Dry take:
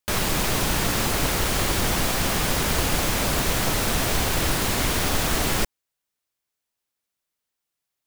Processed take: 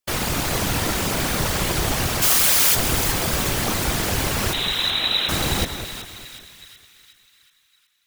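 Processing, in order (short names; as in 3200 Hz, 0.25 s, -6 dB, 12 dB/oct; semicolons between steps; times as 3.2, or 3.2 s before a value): 2.22–2.75 tilt +3.5 dB/oct; 4.53–5.29 inverted band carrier 3900 Hz; on a send: split-band echo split 1500 Hz, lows 0.201 s, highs 0.37 s, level -9.5 dB; on the sum: whisperiser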